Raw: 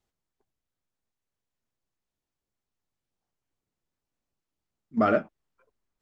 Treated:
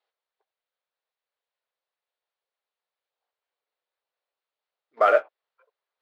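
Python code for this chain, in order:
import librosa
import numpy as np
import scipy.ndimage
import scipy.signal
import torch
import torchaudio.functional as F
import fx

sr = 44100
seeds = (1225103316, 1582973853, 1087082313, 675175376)

p1 = scipy.signal.sosfilt(scipy.signal.ellip(3, 1.0, 40, [490.0, 4200.0], 'bandpass', fs=sr, output='sos'), x)
p2 = np.sign(p1) * np.maximum(np.abs(p1) - 10.0 ** (-40.5 / 20.0), 0.0)
p3 = p1 + F.gain(torch.from_numpy(p2), -9.0).numpy()
y = F.gain(torch.from_numpy(p3), 3.5).numpy()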